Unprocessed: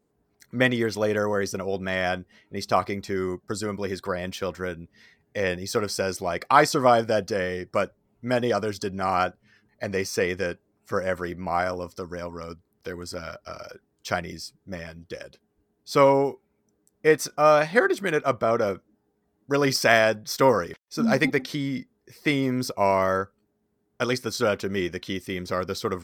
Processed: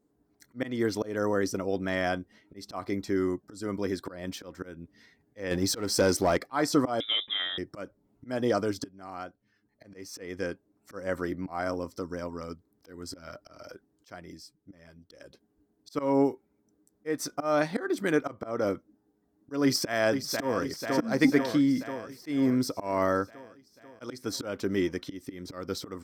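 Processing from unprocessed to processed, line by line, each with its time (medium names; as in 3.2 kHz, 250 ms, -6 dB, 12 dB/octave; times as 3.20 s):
5.51–6.37 s: waveshaping leveller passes 2
7.00–7.58 s: frequency inversion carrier 3.7 kHz
8.84–11.09 s: fade in, from -23 dB
14.10–15.10 s: gain -8 dB
19.63–20.61 s: echo throw 490 ms, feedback 65%, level -10 dB
whole clip: peaking EQ 2.6 kHz -4.5 dB 0.67 oct; slow attack 233 ms; peaking EQ 290 Hz +10.5 dB 0.34 oct; trim -3 dB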